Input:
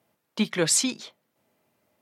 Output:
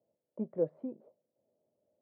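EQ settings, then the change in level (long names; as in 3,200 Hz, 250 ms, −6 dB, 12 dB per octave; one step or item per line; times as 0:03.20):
transistor ladder low-pass 620 Hz, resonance 65%
−2.0 dB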